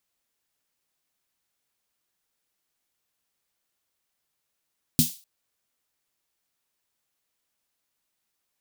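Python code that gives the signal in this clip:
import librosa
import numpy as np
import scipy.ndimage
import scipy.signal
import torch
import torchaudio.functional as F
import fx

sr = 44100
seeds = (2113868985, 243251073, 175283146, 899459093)

y = fx.drum_snare(sr, seeds[0], length_s=0.25, hz=160.0, second_hz=240.0, noise_db=-3.0, noise_from_hz=3400.0, decay_s=0.15, noise_decay_s=0.35)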